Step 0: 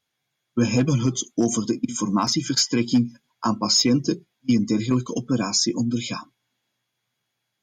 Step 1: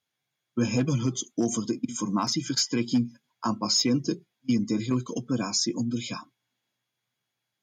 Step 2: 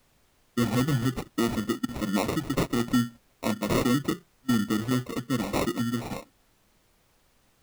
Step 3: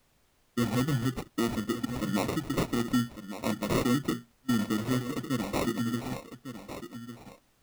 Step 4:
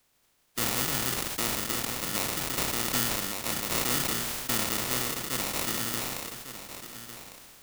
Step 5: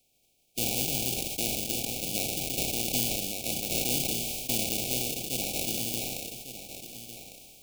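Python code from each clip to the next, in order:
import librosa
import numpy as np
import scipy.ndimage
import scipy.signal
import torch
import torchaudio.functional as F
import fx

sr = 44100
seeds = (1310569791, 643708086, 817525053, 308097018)

y1 = scipy.signal.sosfilt(scipy.signal.butter(2, 58.0, 'highpass', fs=sr, output='sos'), x)
y1 = y1 * librosa.db_to_amplitude(-5.0)
y2 = fx.sample_hold(y1, sr, seeds[0], rate_hz=1600.0, jitter_pct=0)
y2 = fx.dmg_noise_colour(y2, sr, seeds[1], colour='pink', level_db=-65.0)
y3 = y2 + 10.0 ** (-11.0 / 20.0) * np.pad(y2, (int(1153 * sr / 1000.0), 0))[:len(y2)]
y3 = y3 * librosa.db_to_amplitude(-3.0)
y4 = fx.spec_flatten(y3, sr, power=0.33)
y4 = fx.sustainer(y4, sr, db_per_s=23.0)
y4 = y4 * librosa.db_to_amplitude(-2.5)
y5 = fx.brickwall_bandstop(y4, sr, low_hz=830.0, high_hz=2200.0)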